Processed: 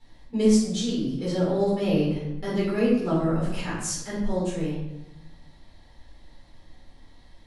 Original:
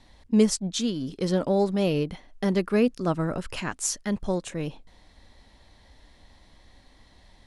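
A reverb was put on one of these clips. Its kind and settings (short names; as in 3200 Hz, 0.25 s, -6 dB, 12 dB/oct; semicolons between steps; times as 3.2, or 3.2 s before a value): shoebox room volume 280 m³, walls mixed, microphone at 4.2 m; gain -12 dB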